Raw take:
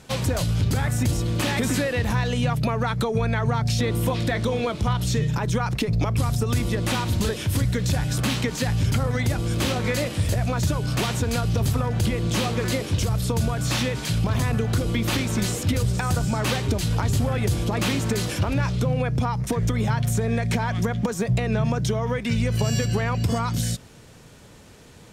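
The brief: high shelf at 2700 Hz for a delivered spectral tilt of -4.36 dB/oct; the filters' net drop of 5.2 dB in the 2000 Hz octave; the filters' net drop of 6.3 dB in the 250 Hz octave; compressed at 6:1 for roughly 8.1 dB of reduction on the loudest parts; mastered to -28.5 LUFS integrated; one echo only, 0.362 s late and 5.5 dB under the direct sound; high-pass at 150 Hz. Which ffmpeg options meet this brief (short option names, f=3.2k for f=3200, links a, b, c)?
-af "highpass=150,equalizer=f=250:t=o:g=-7,equalizer=f=2k:t=o:g=-8.5,highshelf=f=2.7k:g=4,acompressor=threshold=-32dB:ratio=6,aecho=1:1:362:0.531,volume=5.5dB"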